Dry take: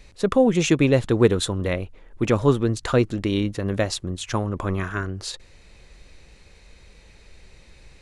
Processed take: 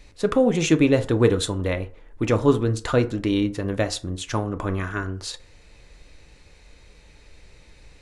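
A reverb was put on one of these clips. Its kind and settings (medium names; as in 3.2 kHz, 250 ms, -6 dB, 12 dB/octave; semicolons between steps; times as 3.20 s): FDN reverb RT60 0.43 s, low-frequency decay 0.75×, high-frequency decay 0.5×, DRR 8 dB; trim -1 dB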